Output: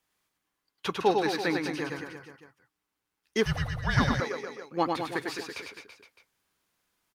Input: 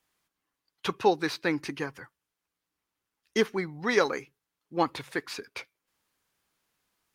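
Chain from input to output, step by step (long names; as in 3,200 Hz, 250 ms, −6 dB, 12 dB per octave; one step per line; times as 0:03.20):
reverse bouncing-ball delay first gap 100 ms, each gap 1.1×, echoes 5
0:03.45–0:04.20: frequency shifter −290 Hz
level −1.5 dB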